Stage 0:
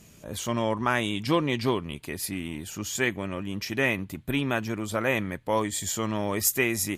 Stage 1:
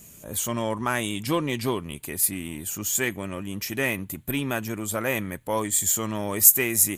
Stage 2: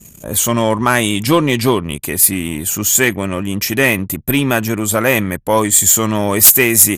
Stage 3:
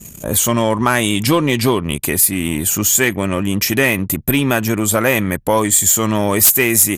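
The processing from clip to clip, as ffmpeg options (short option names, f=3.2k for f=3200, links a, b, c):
-filter_complex "[0:a]asplit=2[a][b];[b]asoftclip=type=tanh:threshold=-25.5dB,volume=-11dB[c];[a][c]amix=inputs=2:normalize=0,aexciter=amount=5.3:drive=1.4:freq=6.9k,volume=-2dB"
-af "anlmdn=0.0251,aeval=exprs='0.891*sin(PI/2*2.82*val(0)/0.891)':c=same"
-af "acompressor=threshold=-20dB:ratio=2,volume=4.5dB"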